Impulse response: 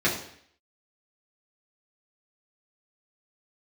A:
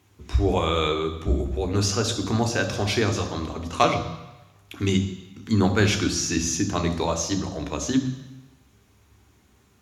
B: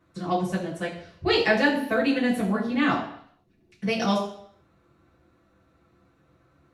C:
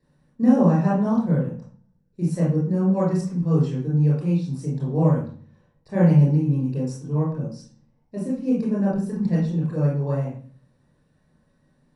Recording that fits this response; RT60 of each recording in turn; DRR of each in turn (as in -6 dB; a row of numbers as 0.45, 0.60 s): B; 1.0, 0.60, 0.45 s; 5.5, -6.5, -7.0 dB